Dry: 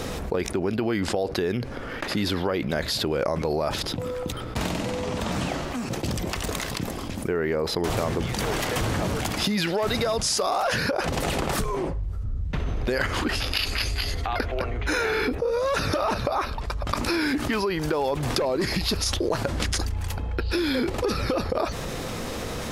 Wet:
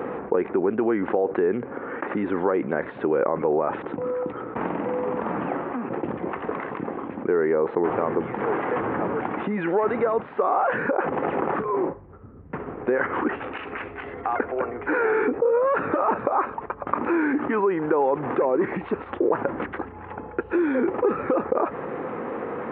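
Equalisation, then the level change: Gaussian blur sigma 5.7 samples; HPF 350 Hz 12 dB/oct; bell 630 Hz -8 dB 0.36 oct; +8.0 dB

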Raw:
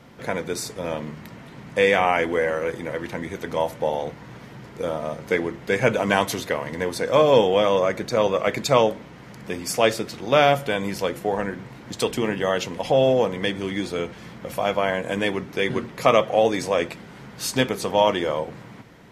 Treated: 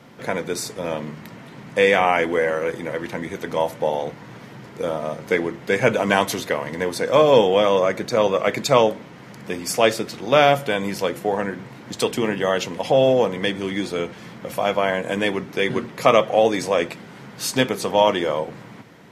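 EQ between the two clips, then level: HPF 110 Hz; +2.0 dB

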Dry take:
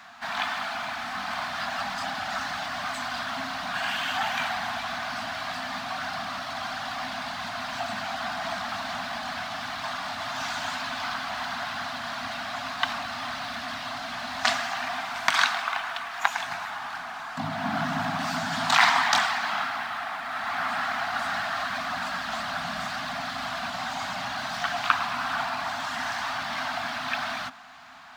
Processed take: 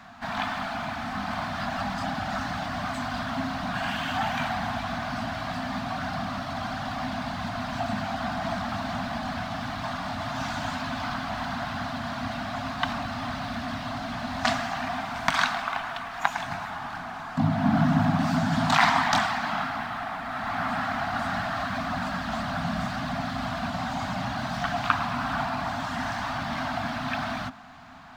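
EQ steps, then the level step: tilt shelf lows +4.5 dB, about 820 Hz; low shelf 300 Hz +10 dB; 0.0 dB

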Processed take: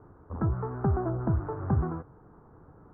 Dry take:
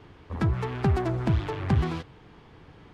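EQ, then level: elliptic low-pass 1400 Hz, stop band 60 dB; -2.0 dB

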